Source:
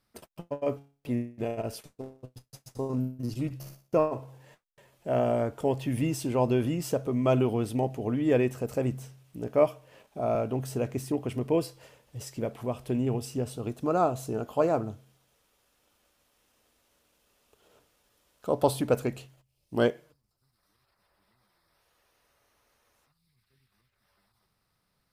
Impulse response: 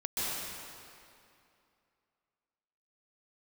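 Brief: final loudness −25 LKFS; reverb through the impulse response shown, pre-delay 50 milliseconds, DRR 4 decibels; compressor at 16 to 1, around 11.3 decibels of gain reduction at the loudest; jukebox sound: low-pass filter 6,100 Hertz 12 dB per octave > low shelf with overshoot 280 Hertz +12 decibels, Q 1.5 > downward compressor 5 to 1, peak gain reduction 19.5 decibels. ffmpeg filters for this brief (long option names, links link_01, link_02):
-filter_complex "[0:a]acompressor=threshold=-29dB:ratio=16,asplit=2[link_01][link_02];[1:a]atrim=start_sample=2205,adelay=50[link_03];[link_02][link_03]afir=irnorm=-1:irlink=0,volume=-11dB[link_04];[link_01][link_04]amix=inputs=2:normalize=0,lowpass=6100,lowshelf=frequency=280:width_type=q:width=1.5:gain=12,acompressor=threshold=-39dB:ratio=5,volume=17dB"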